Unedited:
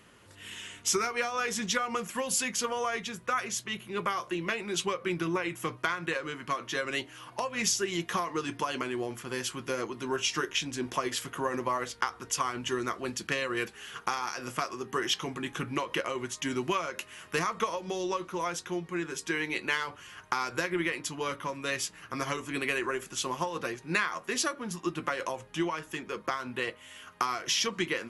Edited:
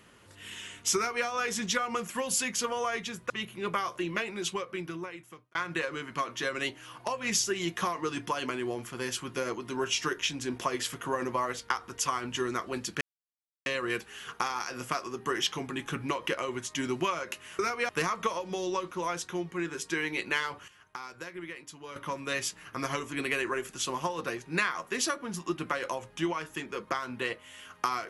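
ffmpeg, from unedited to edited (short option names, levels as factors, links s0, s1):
-filter_complex "[0:a]asplit=8[s0][s1][s2][s3][s4][s5][s6][s7];[s0]atrim=end=3.302[s8];[s1]atrim=start=3.618:end=5.87,asetpts=PTS-STARTPTS,afade=t=out:st=0.852:d=1.4[s9];[s2]atrim=start=5.87:end=13.33,asetpts=PTS-STARTPTS,afade=t=in:d=0.004:c=hsin,afade=t=out:st=7.456:d=0.004:c=hsin,apad=pad_dur=0.65[s10];[s3]atrim=start=13.33:end=17.262,asetpts=PTS-STARTPTS,afade=t=in:d=0.004:c=hsin[s11];[s4]atrim=start=0.958:end=1.262[s12];[s5]atrim=start=17.258:end=20.052[s13];[s6]atrim=start=20.048:end=21.332,asetpts=PTS-STARTPTS,volume=0.282[s14];[s7]atrim=start=21.328[s15];[s9][s10][s11]concat=n=3:v=0:a=1[s16];[s8][s16]acrossfade=d=0.004:c1=hsin:c2=hsin[s17];[s17][s12]acrossfade=d=0.004:c1=hsin:c2=hsin[s18];[s18][s13]acrossfade=d=0.004:c1=hsin:c2=hsin[s19];[s19][s14]acrossfade=d=0.004:c1=hsin:c2=hsin[s20];[s20][s15]acrossfade=d=0.004:c1=hsin:c2=hsin"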